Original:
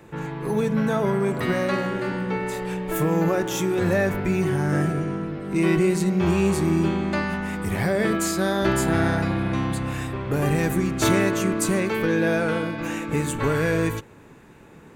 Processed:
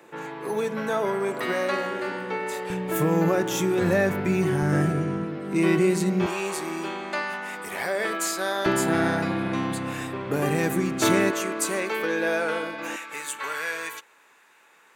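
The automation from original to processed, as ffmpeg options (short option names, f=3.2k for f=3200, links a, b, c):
-af "asetnsamples=n=441:p=0,asendcmd='2.7 highpass f 120;4.62 highpass f 56;5.24 highpass f 170;6.26 highpass f 560;8.66 highpass f 190;11.31 highpass f 450;12.96 highpass f 1100',highpass=370"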